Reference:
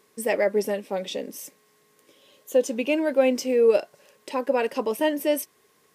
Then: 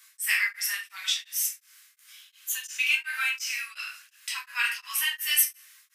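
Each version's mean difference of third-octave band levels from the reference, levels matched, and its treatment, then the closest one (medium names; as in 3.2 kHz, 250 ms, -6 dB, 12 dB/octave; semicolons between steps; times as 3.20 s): 15.5 dB: steep high-pass 1.3 kHz 48 dB/octave; treble shelf 5.5 kHz +6 dB; simulated room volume 95 m³, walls mixed, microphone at 1.2 m; tremolo of two beating tones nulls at 2.8 Hz; trim +4.5 dB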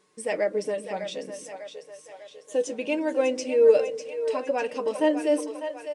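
4.5 dB: comb 6.6 ms, depth 37%; flange 0.66 Hz, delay 5.3 ms, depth 1.6 ms, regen +59%; two-band feedback delay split 430 Hz, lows 126 ms, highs 599 ms, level -9 dB; resampled via 22.05 kHz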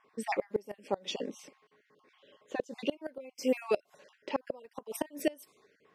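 8.5 dB: random holes in the spectrogram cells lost 31%; level-controlled noise filter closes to 2.1 kHz, open at -23 dBFS; bass shelf 110 Hz -9.5 dB; inverted gate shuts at -17 dBFS, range -27 dB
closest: second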